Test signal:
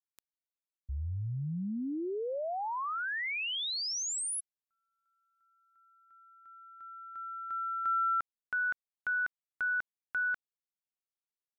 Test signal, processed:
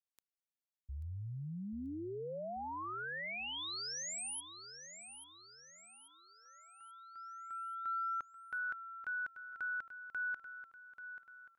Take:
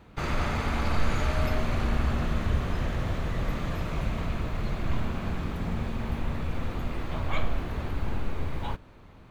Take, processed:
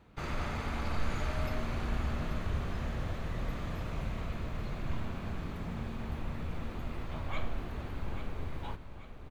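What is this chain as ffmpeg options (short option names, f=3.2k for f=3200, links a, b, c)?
-af "aecho=1:1:836|1672|2508|3344|4180:0.282|0.132|0.0623|0.0293|0.0138,volume=-7.5dB"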